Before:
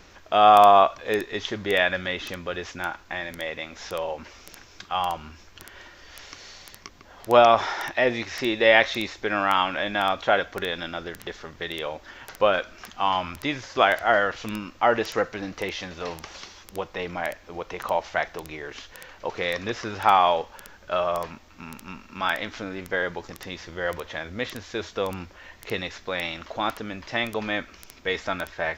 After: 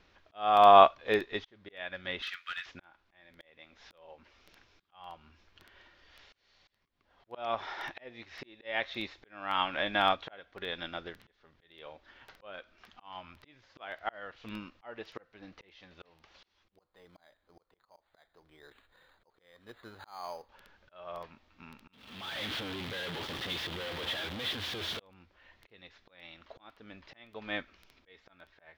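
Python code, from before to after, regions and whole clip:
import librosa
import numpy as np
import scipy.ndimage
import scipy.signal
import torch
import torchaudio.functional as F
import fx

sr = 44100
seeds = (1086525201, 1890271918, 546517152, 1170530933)

y = fx.chain(x, sr, fx.cheby1_highpass(hz=1300.0, order=5),
    fx.high_shelf(hz=5000.0, db=-4.0),
    fx.leveller(passes=2), at=(2.22, 2.66))
y = fx.chain(y, sr, fx.ladder_lowpass(hz=2300.0, resonance_pct=25),
    fx.resample_bad(factor=8, down='none', up='hold'), at=(16.78, 20.49))
y = fx.chain(y, sr, fx.clip_1bit(),
    fx.highpass(hz=71.0, slope=12),
    fx.peak_eq(hz=3300.0, db=8.0, octaves=0.37), at=(21.93, 25.0))
y = fx.high_shelf_res(y, sr, hz=5200.0, db=-9.0, q=1.5)
y = fx.auto_swell(y, sr, attack_ms=545.0)
y = fx.upward_expand(y, sr, threshold_db=-43.0, expansion=1.5)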